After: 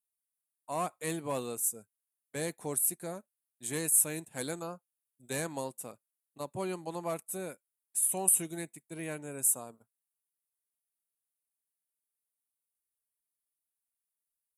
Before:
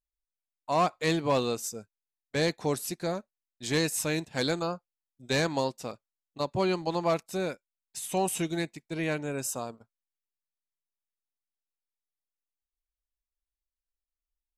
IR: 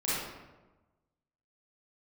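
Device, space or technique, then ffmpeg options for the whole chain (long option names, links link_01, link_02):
budget condenser microphone: -af "highpass=95,highshelf=frequency=7100:width_type=q:width=3:gain=13.5,volume=-8.5dB"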